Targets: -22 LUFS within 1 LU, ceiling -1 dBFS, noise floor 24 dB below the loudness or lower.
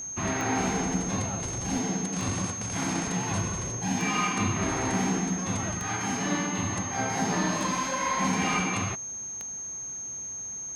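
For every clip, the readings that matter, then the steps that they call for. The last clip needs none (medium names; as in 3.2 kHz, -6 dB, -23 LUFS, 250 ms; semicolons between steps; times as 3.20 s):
clicks found 6; steady tone 6.4 kHz; tone level -34 dBFS; loudness -28.5 LUFS; peak level -14.0 dBFS; loudness target -22.0 LUFS
-> de-click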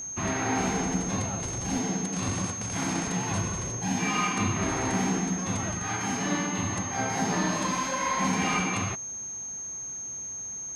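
clicks found 0; steady tone 6.4 kHz; tone level -34 dBFS
-> band-stop 6.4 kHz, Q 30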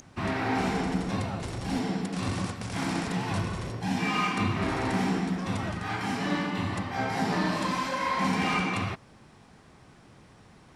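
steady tone not found; loudness -29.5 LUFS; peak level -15.0 dBFS; loudness target -22.0 LUFS
-> trim +7.5 dB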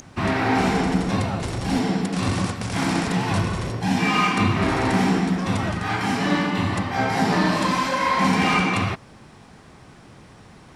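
loudness -22.0 LUFS; peak level -7.5 dBFS; noise floor -47 dBFS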